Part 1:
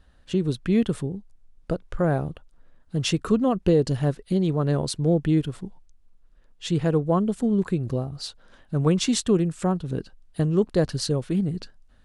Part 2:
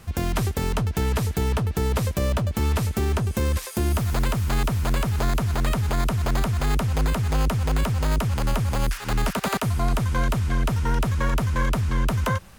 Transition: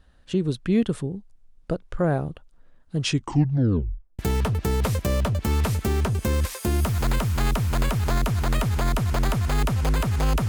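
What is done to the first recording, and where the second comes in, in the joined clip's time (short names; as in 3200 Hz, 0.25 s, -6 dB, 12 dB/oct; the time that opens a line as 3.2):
part 1
3.01 tape stop 1.18 s
4.19 switch to part 2 from 1.31 s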